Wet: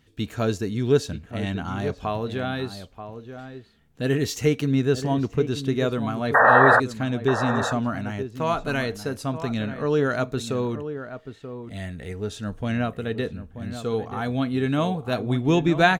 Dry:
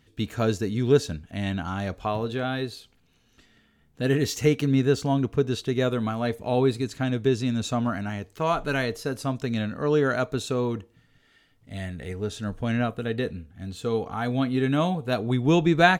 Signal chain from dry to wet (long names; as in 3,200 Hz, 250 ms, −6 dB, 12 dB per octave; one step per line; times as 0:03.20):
sound drawn into the spectrogram noise, 0:06.34–0:06.80, 450–1,900 Hz −15 dBFS
slap from a distant wall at 160 metres, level −10 dB